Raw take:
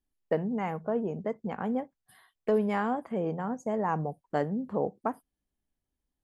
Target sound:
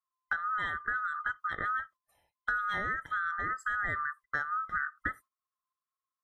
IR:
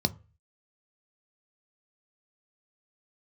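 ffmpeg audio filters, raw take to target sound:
-af "afftfilt=real='real(if(lt(b,960),b+48*(1-2*mod(floor(b/48),2)),b),0)':imag='imag(if(lt(b,960),b+48*(1-2*mod(floor(b/48),2)),b),0)':win_size=2048:overlap=0.75,agate=range=-13dB:threshold=-49dB:ratio=16:detection=peak,acompressor=threshold=-30dB:ratio=6,volume=1dB"

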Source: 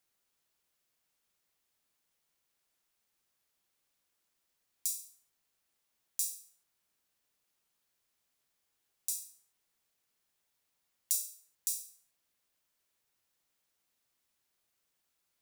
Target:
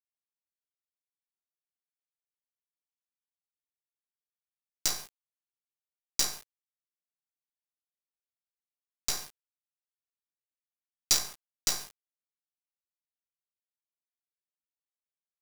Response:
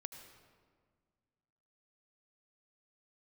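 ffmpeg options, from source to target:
-af "lowpass=frequency=5700:width=0.5412,lowpass=frequency=5700:width=1.3066,highshelf=frequency=2800:width_type=q:width=3:gain=14,acrusher=bits=4:dc=4:mix=0:aa=0.000001"

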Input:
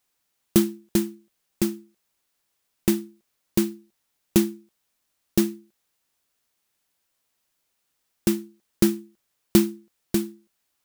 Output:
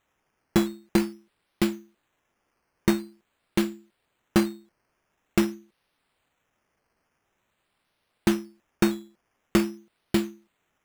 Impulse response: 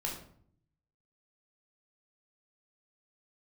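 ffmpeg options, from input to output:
-af "acrusher=samples=9:mix=1:aa=0.000001:lfo=1:lforange=5.4:lforate=0.47,alimiter=limit=-8.5dB:level=0:latency=1:release=260"

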